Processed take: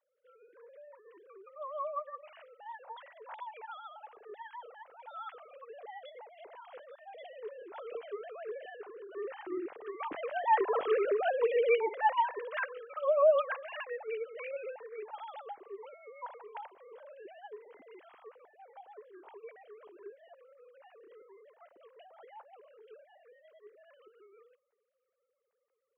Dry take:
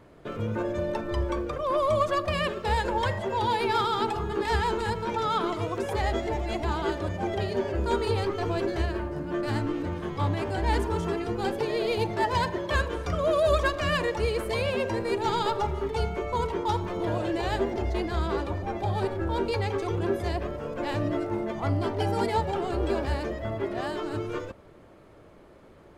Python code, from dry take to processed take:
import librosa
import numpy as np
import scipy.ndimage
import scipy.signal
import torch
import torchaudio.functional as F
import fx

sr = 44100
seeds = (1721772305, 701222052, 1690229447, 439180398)

y = fx.sine_speech(x, sr)
y = fx.doppler_pass(y, sr, speed_mps=6, closest_m=2.6, pass_at_s=11.0)
y = F.gain(torch.from_numpy(y), 5.0).numpy()